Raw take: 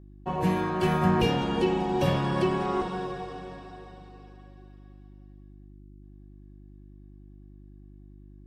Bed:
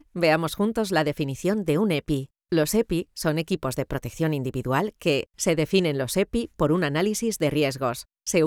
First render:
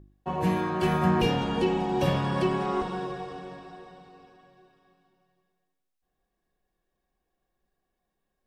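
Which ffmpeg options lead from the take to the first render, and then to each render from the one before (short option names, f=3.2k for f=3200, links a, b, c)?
-af "bandreject=f=50:t=h:w=4,bandreject=f=100:t=h:w=4,bandreject=f=150:t=h:w=4,bandreject=f=200:t=h:w=4,bandreject=f=250:t=h:w=4,bandreject=f=300:t=h:w=4,bandreject=f=350:t=h:w=4,bandreject=f=400:t=h:w=4,bandreject=f=450:t=h:w=4,bandreject=f=500:t=h:w=4"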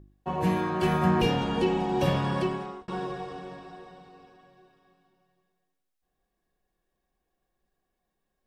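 -filter_complex "[0:a]asplit=2[a][b];[a]atrim=end=2.88,asetpts=PTS-STARTPTS,afade=t=out:st=2.31:d=0.57[c];[b]atrim=start=2.88,asetpts=PTS-STARTPTS,afade=t=in:d=0.004:c=hsin[d];[c][d]concat=n=2:v=0:a=1"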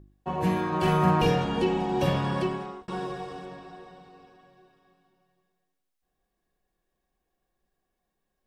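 -filter_complex "[0:a]asettb=1/sr,asplit=3[a][b][c];[a]atrim=end=0.684[d];[b]atrim=start=0.68:end=1.45,asetpts=PTS-STARTPTS,afade=t=in:d=0.004:c=qsin,afade=t=out:st=0.766:d=0.004:c=qsin,asplit=2[e][f];[f]adelay=45,volume=-4dB[g];[e][g]amix=inputs=2:normalize=0,atrim=end_sample=33957[h];[c]atrim=start=1.446[i];[d][h]acrossfade=d=0.004:c1=hsin:c2=qsin[j];[j][i]acrossfade=d=0.004:c1=qsin:c2=hsin,asettb=1/sr,asplit=3[k][l][m];[k]atrim=end=2.834[n];[l]atrim=start=2.83:end=3.46,asetpts=PTS-STARTPTS,afade=t=in:d=0.004:c=qsin,afade=t=out:st=0.626:d=0.004:c=qsin,highshelf=f=8k:g=8.5[o];[m]atrim=start=3.456[p];[n][o]acrossfade=d=0.004:c1=hsin:c2=qsin[q];[q][p]acrossfade=d=0.004:c1=qsin:c2=hsin"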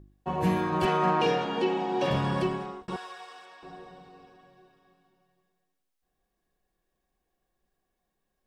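-filter_complex "[0:a]asettb=1/sr,asplit=3[a][b][c];[a]atrim=end=0.854[d];[b]atrim=start=0.85:end=2.11,asetpts=PTS-STARTPTS,afade=t=in:d=0.004:c=qsin,afade=t=out:st=1.256:d=0.004:c=qsin,highpass=280,lowpass=5.9k[e];[c]atrim=start=2.106[f];[d][e]acrossfade=d=0.004:c1=hsin:c2=qsin[g];[g][f]acrossfade=d=0.004:c1=qsin:c2=hsin,asettb=1/sr,asplit=3[h][i][j];[h]atrim=end=2.964[k];[i]atrim=start=2.96:end=3.63,asetpts=PTS-STARTPTS,afade=t=in:d=0.004:c=qsin,afade=t=out:st=0.666:d=0.004:c=qsin,highpass=1.1k[l];[j]atrim=start=3.626[m];[k][l]acrossfade=d=0.004:c1=hsin:c2=qsin[n];[n][m]acrossfade=d=0.004:c1=qsin:c2=hsin"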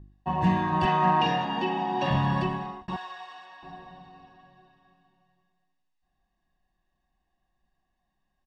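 -af "lowpass=4.5k,aecho=1:1:1.1:0.75"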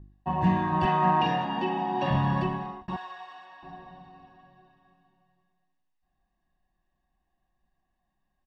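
-af "highshelf=f=3.2k:g=-8,bandreject=f=450:w=12"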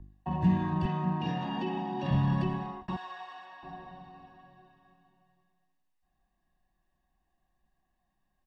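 -filter_complex "[0:a]acrossover=split=300[a][b];[b]alimiter=level_in=1.5dB:limit=-24dB:level=0:latency=1:release=10,volume=-1.5dB[c];[a][c]amix=inputs=2:normalize=0,acrossover=split=360|3000[d][e][f];[e]acompressor=threshold=-38dB:ratio=3[g];[d][g][f]amix=inputs=3:normalize=0"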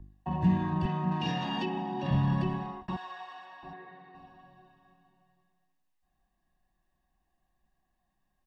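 -filter_complex "[0:a]asettb=1/sr,asplit=3[a][b][c];[a]atrim=end=1.114[d];[b]atrim=start=1.11:end=1.66,asetpts=PTS-STARTPTS,afade=t=in:d=0.004:c=qsin,afade=t=out:st=0.546:d=0.004:c=qsin,highshelf=f=2.4k:g=11.5[e];[c]atrim=start=1.656[f];[d][e]acrossfade=d=0.004:c1=hsin:c2=qsin[g];[g][f]acrossfade=d=0.004:c1=qsin:c2=hsin,asettb=1/sr,asplit=3[h][i][j];[h]atrim=end=3.734[k];[i]atrim=start=3.73:end=4.15,asetpts=PTS-STARTPTS,afade=t=in:d=0.004:c=qsin,afade=t=out:st=0.416:d=0.004:c=qsin,highpass=230,equalizer=f=240:t=q:w=4:g=-7,equalizer=f=430:t=q:w=4:g=9,equalizer=f=610:t=q:w=4:g=-9,equalizer=f=900:t=q:w=4:g=-5,equalizer=f=2k:t=q:w=4:g=10,equalizer=f=3k:t=q:w=4:g=-7,lowpass=f=4k:w=0.5412,lowpass=f=4k:w=1.3066[l];[j]atrim=start=4.146[m];[k][l]acrossfade=d=0.004:c1=hsin:c2=qsin[n];[n][m]acrossfade=d=0.004:c1=qsin:c2=hsin"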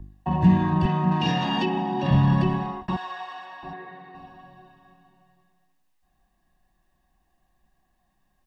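-af "volume=8dB"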